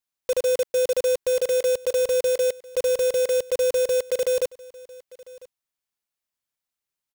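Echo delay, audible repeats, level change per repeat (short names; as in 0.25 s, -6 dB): 0.999 s, 1, no steady repeat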